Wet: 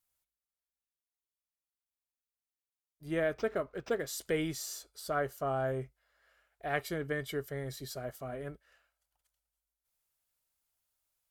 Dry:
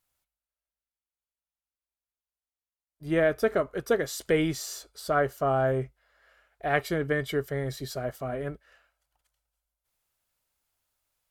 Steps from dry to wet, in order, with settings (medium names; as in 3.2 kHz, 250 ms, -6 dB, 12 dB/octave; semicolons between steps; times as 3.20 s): treble shelf 4.8 kHz +6.5 dB; 3.34–4.07 s: decimation joined by straight lines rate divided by 4×; trim -8 dB